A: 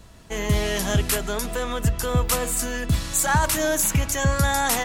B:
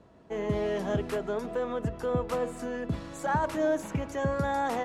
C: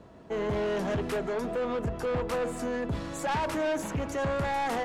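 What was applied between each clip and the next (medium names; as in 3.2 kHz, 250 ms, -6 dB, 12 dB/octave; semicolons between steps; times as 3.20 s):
band-pass filter 430 Hz, Q 0.83; trim -1 dB
saturation -31.5 dBFS, distortion -8 dB; trim +5.5 dB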